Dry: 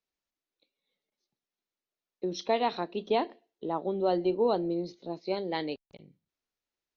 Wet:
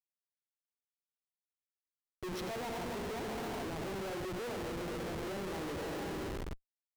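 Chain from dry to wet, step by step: on a send at -4.5 dB: reverb RT60 2.6 s, pre-delay 37 ms; on the sum: compressor 8:1, threshold -38 dBFS, peak gain reduction 17 dB; thinning echo 0.143 s, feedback 47%, high-pass 380 Hz, level -12 dB; Schmitt trigger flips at -46.5 dBFS; high shelf 5500 Hz -4 dB; gain +5 dB

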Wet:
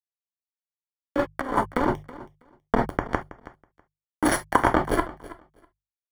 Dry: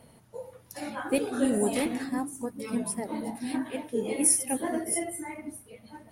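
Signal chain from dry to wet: random spectral dropouts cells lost 37%; bit-crush 4-bit; notch 980 Hz, Q 15; sample leveller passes 5; polynomial smoothing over 41 samples; notches 50/100/150 Hz; non-linear reverb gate 90 ms falling, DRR 6.5 dB; negative-ratio compressor -25 dBFS, ratio -0.5; harmonic tremolo 1 Hz, depth 50%, crossover 540 Hz; feedback echo 0.324 s, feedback 16%, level -18 dB; gain +8.5 dB

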